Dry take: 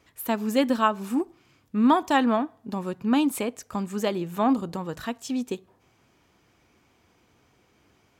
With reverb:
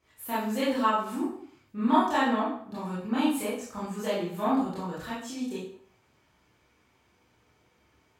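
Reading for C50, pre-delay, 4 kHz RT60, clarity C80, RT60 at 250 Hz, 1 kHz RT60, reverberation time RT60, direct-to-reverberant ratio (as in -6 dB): 1.5 dB, 21 ms, 0.50 s, 6.5 dB, 0.60 s, 0.60 s, 0.60 s, -11.0 dB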